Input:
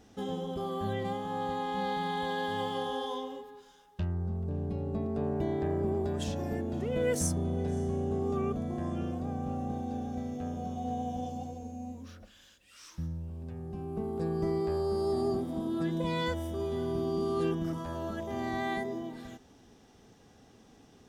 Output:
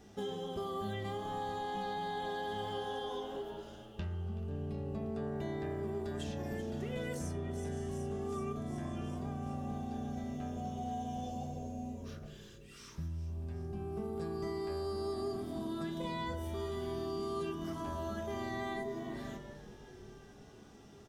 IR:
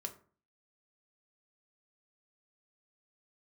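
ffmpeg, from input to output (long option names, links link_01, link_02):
-filter_complex "[0:a]asplit=7[link_01][link_02][link_03][link_04][link_05][link_06][link_07];[link_02]adelay=376,afreqshift=-98,volume=-17dB[link_08];[link_03]adelay=752,afreqshift=-196,volume=-20.9dB[link_09];[link_04]adelay=1128,afreqshift=-294,volume=-24.8dB[link_10];[link_05]adelay=1504,afreqshift=-392,volume=-28.6dB[link_11];[link_06]adelay=1880,afreqshift=-490,volume=-32.5dB[link_12];[link_07]adelay=2256,afreqshift=-588,volume=-36.4dB[link_13];[link_01][link_08][link_09][link_10][link_11][link_12][link_13]amix=inputs=7:normalize=0[link_14];[1:a]atrim=start_sample=2205[link_15];[link_14][link_15]afir=irnorm=-1:irlink=0,acrossover=split=1200|3300[link_16][link_17][link_18];[link_16]acompressor=threshold=-40dB:ratio=4[link_19];[link_17]acompressor=threshold=-52dB:ratio=4[link_20];[link_18]acompressor=threshold=-57dB:ratio=4[link_21];[link_19][link_20][link_21]amix=inputs=3:normalize=0,volume=2.5dB"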